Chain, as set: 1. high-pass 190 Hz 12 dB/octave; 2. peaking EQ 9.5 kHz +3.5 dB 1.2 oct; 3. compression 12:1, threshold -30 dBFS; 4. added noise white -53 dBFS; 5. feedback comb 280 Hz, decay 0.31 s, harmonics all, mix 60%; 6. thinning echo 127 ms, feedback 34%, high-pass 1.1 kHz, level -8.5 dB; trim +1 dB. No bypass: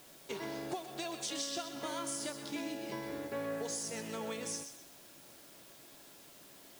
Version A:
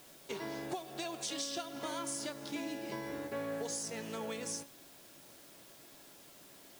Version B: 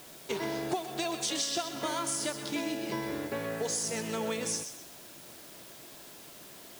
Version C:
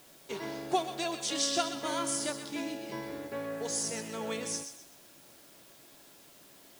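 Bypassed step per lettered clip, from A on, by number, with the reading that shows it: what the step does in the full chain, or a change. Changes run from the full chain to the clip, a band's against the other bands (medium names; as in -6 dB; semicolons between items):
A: 6, echo-to-direct -10.5 dB to none; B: 5, loudness change +6.5 LU; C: 3, mean gain reduction 3.0 dB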